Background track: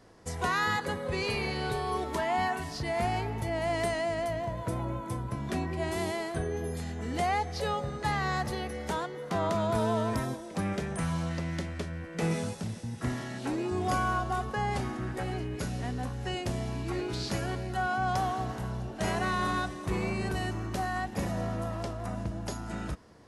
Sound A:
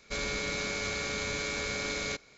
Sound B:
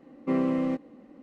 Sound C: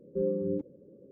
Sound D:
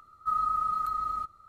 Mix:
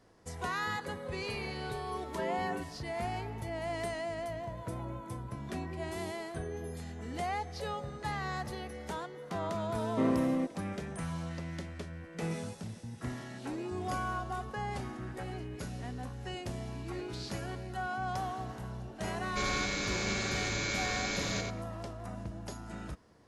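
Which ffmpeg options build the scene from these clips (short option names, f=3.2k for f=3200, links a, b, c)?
-filter_complex "[0:a]volume=-6.5dB[a];[1:a]aecho=1:1:90:0.473[b];[3:a]atrim=end=1.11,asetpts=PTS-STARTPTS,volume=-9dB,afade=t=in:d=0.004:c=hsin,afade=t=out:st=1.106:d=0.004:c=hsin,adelay=2020[c];[2:a]atrim=end=1.22,asetpts=PTS-STARTPTS,volume=-3.5dB,afade=t=in:d=0.004:c=hsin,afade=t=out:st=1.216:d=0.004:c=hsin,adelay=427770S[d];[b]atrim=end=2.37,asetpts=PTS-STARTPTS,volume=-1dB,afade=t=in:d=0.004:c=hsin,afade=t=out:st=2.366:d=0.004:c=hsin,adelay=19250[e];[a][c][d][e]amix=inputs=4:normalize=0"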